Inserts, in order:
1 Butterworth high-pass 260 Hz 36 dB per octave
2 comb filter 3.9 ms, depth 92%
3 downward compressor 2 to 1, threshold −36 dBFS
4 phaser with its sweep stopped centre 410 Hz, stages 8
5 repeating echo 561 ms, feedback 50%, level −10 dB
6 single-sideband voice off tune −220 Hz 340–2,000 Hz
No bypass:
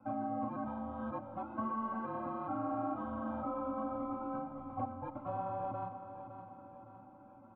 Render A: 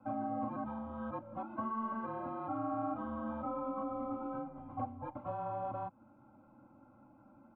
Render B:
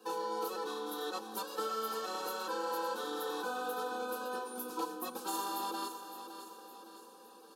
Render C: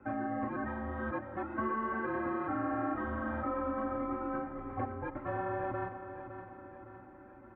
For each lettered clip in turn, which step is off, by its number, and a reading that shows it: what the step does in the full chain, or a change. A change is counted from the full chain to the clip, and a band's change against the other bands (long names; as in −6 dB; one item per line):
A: 5, change in momentary loudness spread −9 LU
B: 6, 250 Hz band −10.0 dB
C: 4, 2 kHz band +10.0 dB